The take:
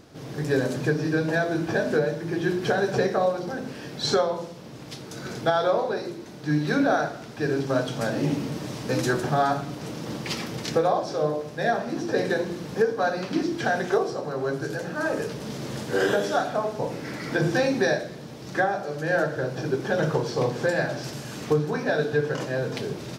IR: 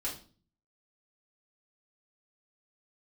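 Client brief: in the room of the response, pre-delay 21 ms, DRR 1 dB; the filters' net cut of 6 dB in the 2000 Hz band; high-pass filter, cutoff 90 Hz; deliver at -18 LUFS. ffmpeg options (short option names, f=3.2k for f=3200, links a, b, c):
-filter_complex "[0:a]highpass=90,equalizer=f=2k:t=o:g=-8.5,asplit=2[a][b];[1:a]atrim=start_sample=2205,adelay=21[c];[b][c]afir=irnorm=-1:irlink=0,volume=-3.5dB[d];[a][d]amix=inputs=2:normalize=0,volume=6dB"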